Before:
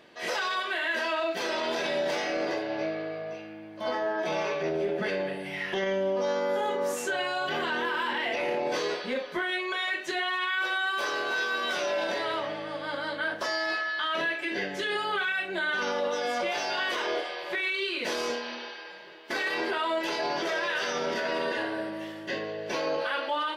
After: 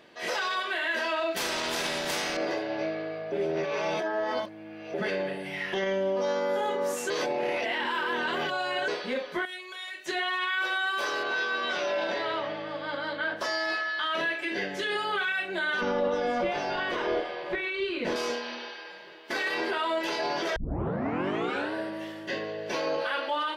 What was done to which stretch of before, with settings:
1.36–2.37 spectral compressor 2:1
3.32–4.94 reverse
7.1–8.88 reverse
9.45–10.06 pre-emphasis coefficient 0.8
11.23–13.37 LPF 5000 Hz
15.81–18.16 RIAA curve playback
20.56 tape start 1.18 s

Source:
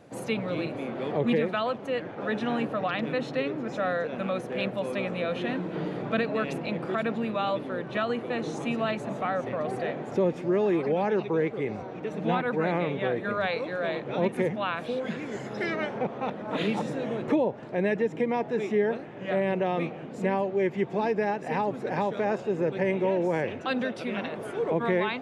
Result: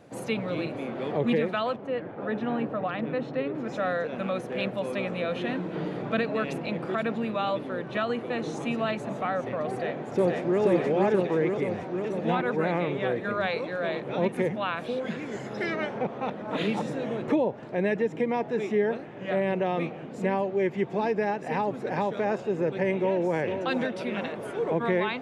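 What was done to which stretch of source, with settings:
1.76–3.55 LPF 1400 Hz 6 dB/oct
9.7–10.61 echo throw 0.48 s, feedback 70%, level -1 dB
22.99–23.4 echo throw 0.46 s, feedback 50%, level -7.5 dB

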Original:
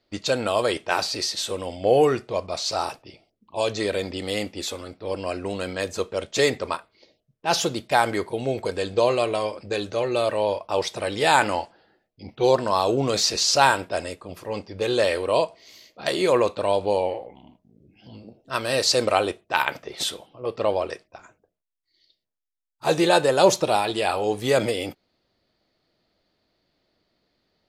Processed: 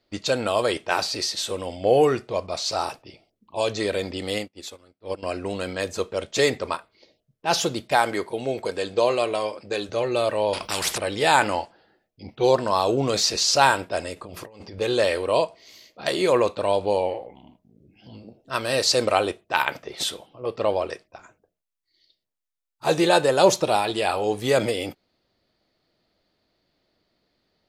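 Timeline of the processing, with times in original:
4.38–5.23 upward expander 2.5:1, over -44 dBFS
7.95–9.89 HPF 200 Hz 6 dB/oct
10.53–10.98 spectral compressor 4:1
14.16–14.79 negative-ratio compressor -41 dBFS

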